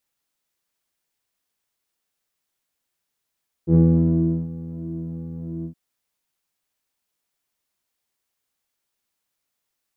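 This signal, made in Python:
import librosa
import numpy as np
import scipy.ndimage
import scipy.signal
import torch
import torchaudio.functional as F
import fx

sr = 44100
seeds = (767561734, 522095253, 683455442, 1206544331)

y = fx.sub_patch_pwm(sr, seeds[0], note=52, wave2='saw', interval_st=0, detune_cents=16, level2_db=-9.0, sub_db=-7.5, noise_db=-30.0, kind='lowpass', cutoff_hz=250.0, q=9.6, env_oct=0.5, env_decay_s=0.27, env_sustain_pct=40, attack_ms=76.0, decay_s=0.73, sustain_db=-18.5, release_s=0.09, note_s=1.98, lfo_hz=1.4, width_pct=44, width_swing_pct=6)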